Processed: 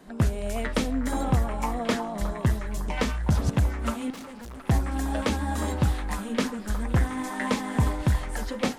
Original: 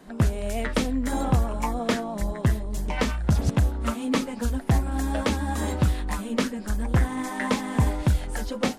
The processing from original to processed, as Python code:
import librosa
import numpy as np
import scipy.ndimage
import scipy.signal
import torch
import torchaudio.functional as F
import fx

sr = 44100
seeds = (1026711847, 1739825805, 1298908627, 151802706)

y = fx.echo_stepped(x, sr, ms=362, hz=990.0, octaves=0.7, feedback_pct=70, wet_db=-6.5)
y = fx.tube_stage(y, sr, drive_db=37.0, bias=0.6, at=(4.1, 4.68))
y = fx.echo_feedback(y, sr, ms=69, feedback_pct=44, wet_db=-23.5)
y = F.gain(torch.from_numpy(y), -1.5).numpy()